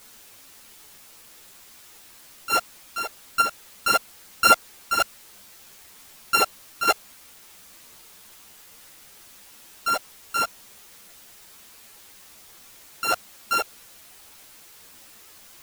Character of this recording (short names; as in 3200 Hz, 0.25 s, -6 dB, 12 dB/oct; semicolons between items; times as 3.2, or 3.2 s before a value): a buzz of ramps at a fixed pitch in blocks of 32 samples; chopped level 1.6 Hz, depth 60%, duty 45%; a quantiser's noise floor 8-bit, dither triangular; a shimmering, thickened sound